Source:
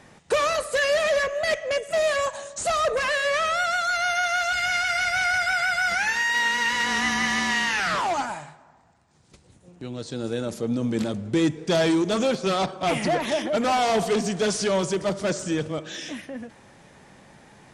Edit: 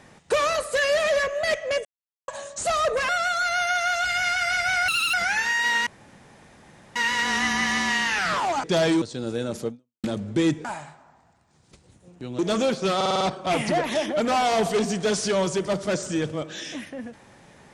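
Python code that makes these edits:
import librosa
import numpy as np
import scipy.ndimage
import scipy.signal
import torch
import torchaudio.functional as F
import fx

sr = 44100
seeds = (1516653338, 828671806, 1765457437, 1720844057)

y = fx.edit(x, sr, fx.silence(start_s=1.85, length_s=0.43),
    fx.cut(start_s=3.09, length_s=0.48),
    fx.speed_span(start_s=5.36, length_s=0.48, speed=1.87),
    fx.insert_room_tone(at_s=6.57, length_s=1.09),
    fx.swap(start_s=8.25, length_s=1.74, other_s=11.62, other_length_s=0.38),
    fx.fade_out_span(start_s=10.65, length_s=0.36, curve='exp'),
    fx.stutter(start_s=12.57, slice_s=0.05, count=6), tone=tone)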